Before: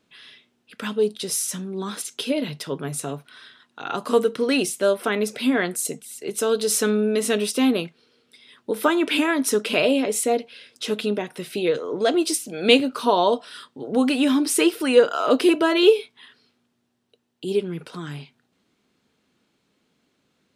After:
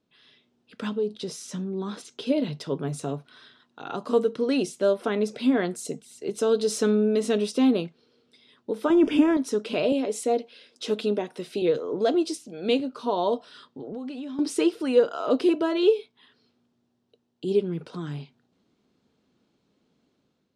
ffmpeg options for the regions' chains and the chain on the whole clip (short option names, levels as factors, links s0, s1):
-filter_complex "[0:a]asettb=1/sr,asplit=3[s0][s1][s2];[s0]atrim=end=0.894[s3];[s1]atrim=start=0.89:end=2.27,asetpts=PTS-STARTPTS,afade=t=in:d=0.004:c=qsin,afade=t=out:st=1.376:d=0.004:c=qsin,highshelf=f=6000:g=-8,acompressor=threshold=0.0447:ratio=2:attack=3.2:release=140:knee=1:detection=peak[s4];[s2]atrim=start=2.266[s5];[s3][s4]acrossfade=d=0.004:c1=hsin:c2=qsin[s6];[s6][s5]acrossfade=d=0.004:c1=qsin:c2=hsin,asettb=1/sr,asplit=3[s7][s8][s9];[s7]atrim=end=8.904[s10];[s8]atrim=start=8.9:end=9.37,asetpts=PTS-STARTPTS,afade=t=in:d=0.004:c=qsin,afade=t=out:st=0.466:d=0.004:c=qsin,aeval=exprs='val(0)+0.5*0.0178*sgn(val(0))':c=same,asuperstop=centerf=4100:order=4:qfactor=3.6,lowshelf=f=410:g=11.5[s11];[s9]atrim=start=9.366[s12];[s10][s11]acrossfade=d=0.004:c1=hsin:c2=qsin[s13];[s13][s12]acrossfade=d=0.004:c1=qsin:c2=hsin,asettb=1/sr,asplit=3[s14][s15][s16];[s14]atrim=end=9.924[s17];[s15]atrim=start=9.92:end=11.62,asetpts=PTS-STARTPTS,afade=t=in:d=0.004:c=qsin,afade=t=out:st=1.696:d=0.004:c=qsin,highpass=220,highshelf=f=8600:g=5[s18];[s16]atrim=start=11.616[s19];[s17][s18]acrossfade=d=0.004:c1=hsin:c2=qsin[s20];[s20][s19]acrossfade=d=0.004:c1=qsin:c2=hsin,asettb=1/sr,asplit=3[s21][s22][s23];[s21]atrim=end=13.514[s24];[s22]atrim=start=13.51:end=14.39,asetpts=PTS-STARTPTS,afade=t=in:d=0.004:c=qsin,afade=t=out:st=0.876:d=0.004:c=qsin,lowpass=7600,acompressor=threshold=0.0251:ratio=8:attack=3.2:release=140:knee=1:detection=peak[s25];[s23]atrim=start=14.386[s26];[s24][s25]acrossfade=d=0.004:c1=hsin:c2=qsin[s27];[s27][s26]acrossfade=d=0.004:c1=qsin:c2=hsin,dynaudnorm=f=120:g=7:m=2.24,lowpass=5200,equalizer=f=2100:t=o:w=1.9:g=-9,volume=0.501"